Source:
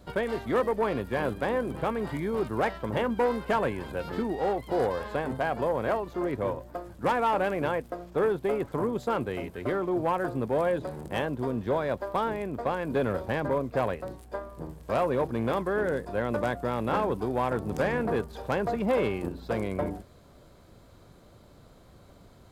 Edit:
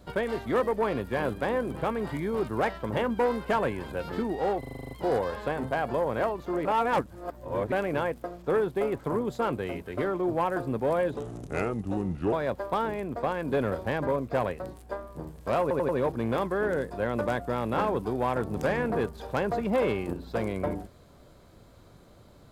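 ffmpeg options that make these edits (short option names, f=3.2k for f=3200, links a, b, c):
-filter_complex "[0:a]asplit=16[a][b][c][d][e][f][g][h][i][j][k][l][m][n][o][p];[a]atrim=end=4.632[q];[b]atrim=start=4.588:end=4.632[r];[c]atrim=start=4.588:end=4.632[s];[d]atrim=start=4.588:end=4.632[t];[e]atrim=start=4.588:end=4.632[u];[f]atrim=start=4.588:end=4.632[v];[g]atrim=start=4.588:end=4.632[w];[h]atrim=start=4.588:end=4.632[x];[i]atrim=start=4.588:end=6.332[y];[j]atrim=start=6.328:end=7.402,asetpts=PTS-STARTPTS,areverse[z];[k]atrim=start=7.398:end=10.844[aa];[l]atrim=start=10.84:end=11.75,asetpts=PTS-STARTPTS,asetrate=34398,aresample=44100[ab];[m]atrim=start=11.746:end=15.132[ac];[n]atrim=start=15.038:end=15.132[ad];[o]atrim=start=15.038:end=15.132[ae];[p]atrim=start=15.038[af];[q][r]acrossfade=d=0.004:c1=hsin:c2=hsin[ag];[ag][s]acrossfade=d=0.004:c1=hsin:c2=hsin[ah];[ah][t]acrossfade=d=0.004:c1=hsin:c2=hsin[ai];[ai][u]acrossfade=d=0.004:c1=hsin:c2=hsin[aj];[aj][v]acrossfade=d=0.004:c1=hsin:c2=hsin[ak];[ak][w]acrossfade=d=0.004:c1=hsin:c2=hsin[al];[al][x]acrossfade=d=0.004:c1=hsin:c2=hsin[am];[am][y]acrossfade=d=0.004:c1=hsin:c2=hsin[an];[an][z]acrossfade=d=0.004:c1=hsin:c2=hsin[ao];[ao][aa]acrossfade=d=0.004:c1=hsin:c2=hsin[ap];[ap][ab]acrossfade=d=0.004:c1=hsin:c2=hsin[aq];[aq][ac]acrossfade=d=0.004:c1=hsin:c2=hsin[ar];[ar][ad]acrossfade=d=0.004:c1=hsin:c2=hsin[as];[as][ae]acrossfade=d=0.004:c1=hsin:c2=hsin[at];[at][af]acrossfade=d=0.004:c1=hsin:c2=hsin"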